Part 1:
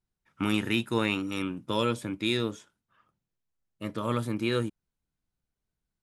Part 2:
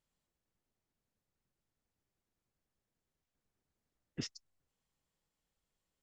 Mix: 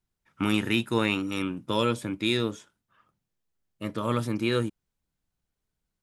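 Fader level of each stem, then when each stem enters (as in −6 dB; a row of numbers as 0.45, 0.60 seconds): +2.0, −7.5 decibels; 0.00, 0.00 seconds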